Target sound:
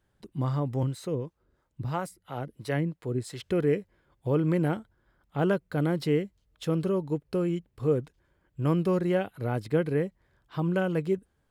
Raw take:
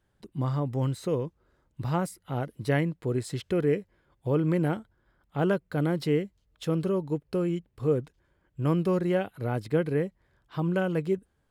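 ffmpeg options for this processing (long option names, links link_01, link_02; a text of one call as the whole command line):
ffmpeg -i in.wav -filter_complex "[0:a]asettb=1/sr,asplit=3[link_01][link_02][link_03];[link_01]atrim=end=0.834[link_04];[link_02]atrim=start=0.83:end=3.4,asetpts=PTS-STARTPTS,afade=type=in:duration=0.004:curve=qsin,afade=type=out:start_time=2.566:duration=0.004:curve=qsin,acrossover=split=460[link_05][link_06];[link_05]aeval=exprs='val(0)*(1-0.7/2+0.7/2*cos(2*PI*3*n/s))':channel_layout=same[link_07];[link_06]aeval=exprs='val(0)*(1-0.7/2-0.7/2*cos(2*PI*3*n/s))':channel_layout=same[link_08];[link_07][link_08]amix=inputs=2:normalize=0[link_09];[link_03]atrim=start=3.396[link_10];[link_04][link_09]acrossfade=duration=0.004:curve1=hsin:curve2=qsin[link_11];[link_11][link_10]acrossfade=duration=0.004:curve1=qsin:curve2=hsin" out.wav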